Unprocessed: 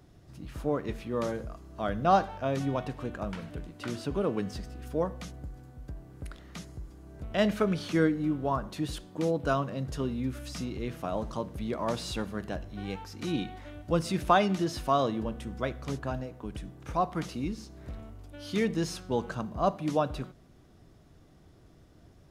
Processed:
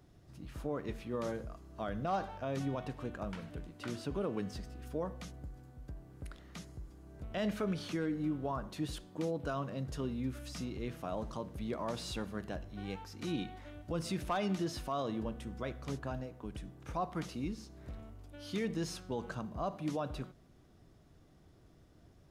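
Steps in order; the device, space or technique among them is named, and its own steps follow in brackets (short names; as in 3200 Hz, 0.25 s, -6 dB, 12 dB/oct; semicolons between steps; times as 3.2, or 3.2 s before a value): clipper into limiter (hard clip -14.5 dBFS, distortion -27 dB; limiter -21.5 dBFS, peak gain reduction 7 dB); gain -5 dB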